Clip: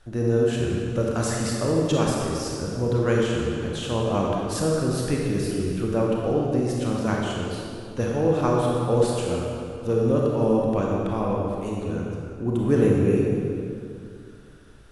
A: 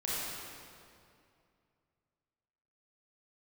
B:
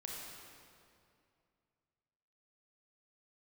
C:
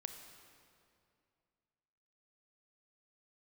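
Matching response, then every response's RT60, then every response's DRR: B; 2.4 s, 2.4 s, 2.4 s; -8.0 dB, -3.0 dB, 6.0 dB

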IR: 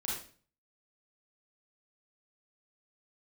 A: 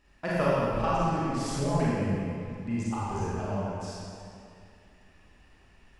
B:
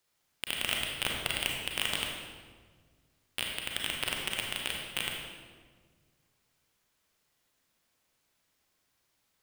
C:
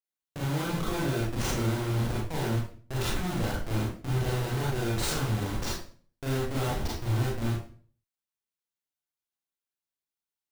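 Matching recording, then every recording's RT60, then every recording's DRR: C; 2.5 s, 1.6 s, 0.45 s; -8.5 dB, -0.5 dB, -5.5 dB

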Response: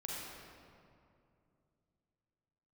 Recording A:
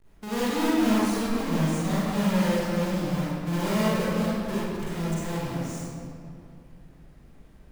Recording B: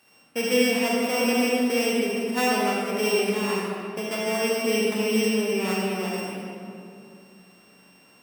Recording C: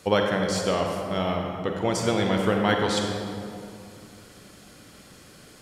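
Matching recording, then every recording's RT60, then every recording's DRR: B; 2.5 s, 2.5 s, 2.6 s; -10.0 dB, -5.0 dB, 1.5 dB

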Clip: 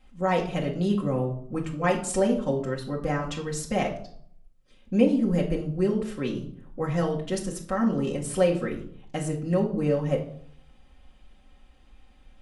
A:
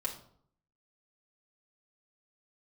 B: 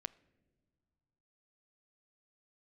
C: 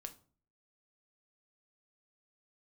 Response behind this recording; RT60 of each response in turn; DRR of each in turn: A; 0.60 s, no single decay rate, 0.45 s; -3.0 dB, 16.5 dB, 6.0 dB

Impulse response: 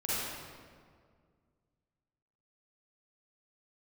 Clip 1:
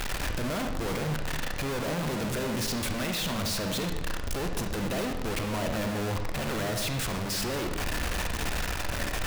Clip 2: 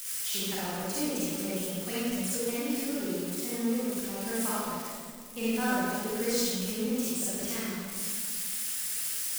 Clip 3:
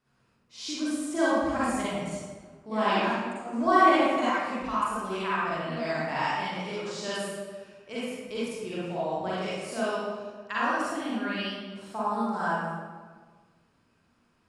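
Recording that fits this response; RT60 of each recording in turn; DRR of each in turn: 2; 1.0 s, 2.0 s, 1.5 s; 4.5 dB, -10.0 dB, -10.0 dB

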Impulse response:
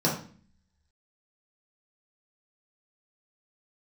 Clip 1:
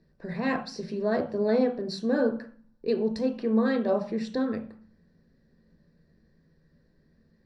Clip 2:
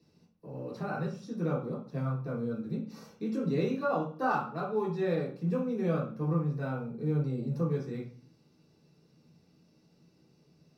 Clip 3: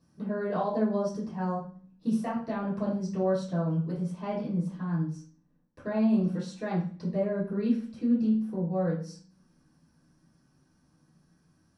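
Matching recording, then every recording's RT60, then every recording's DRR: 2; 0.45 s, 0.45 s, 0.45 s; 3.0 dB, -5.0 dB, -11.5 dB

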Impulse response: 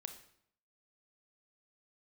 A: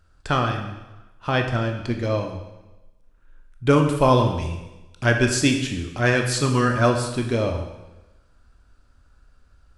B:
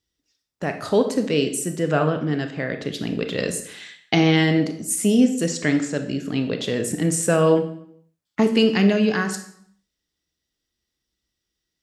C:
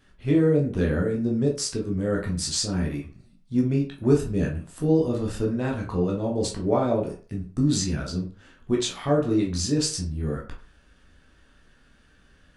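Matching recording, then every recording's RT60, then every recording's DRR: B; 1.1 s, 0.70 s, 0.40 s; 3.5 dB, 7.0 dB, -1.5 dB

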